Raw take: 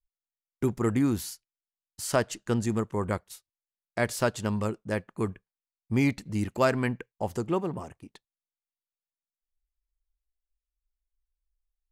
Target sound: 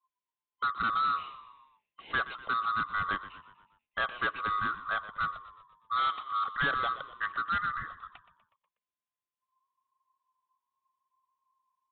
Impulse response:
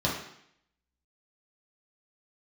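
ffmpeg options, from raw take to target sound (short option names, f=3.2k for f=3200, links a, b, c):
-filter_complex "[0:a]afftfilt=real='real(if(lt(b,960),b+48*(1-2*mod(floor(b/48),2)),b),0)':imag='imag(if(lt(b,960),b+48*(1-2*mod(floor(b/48),2)),b),0)':win_size=2048:overlap=0.75,aresample=8000,asoftclip=type=tanh:threshold=-24.5dB,aresample=44100,asplit=6[a][b][c][d][e][f];[b]adelay=122,afreqshift=-48,volume=-14.5dB[g];[c]adelay=244,afreqshift=-96,volume=-20.2dB[h];[d]adelay=366,afreqshift=-144,volume=-25.9dB[i];[e]adelay=488,afreqshift=-192,volume=-31.5dB[j];[f]adelay=610,afreqshift=-240,volume=-37.2dB[k];[a][g][h][i][j][k]amix=inputs=6:normalize=0"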